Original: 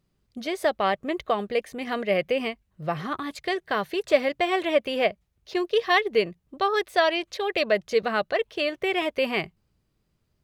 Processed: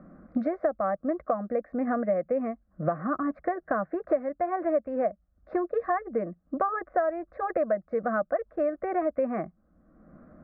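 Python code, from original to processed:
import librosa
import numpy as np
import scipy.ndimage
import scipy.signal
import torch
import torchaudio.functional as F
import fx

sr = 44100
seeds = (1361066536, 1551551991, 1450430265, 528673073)

y = scipy.signal.sosfilt(scipy.signal.butter(4, 1300.0, 'lowpass', fs=sr, output='sos'), x)
y = fx.fixed_phaser(y, sr, hz=610.0, stages=8)
y = fx.band_squash(y, sr, depth_pct=100)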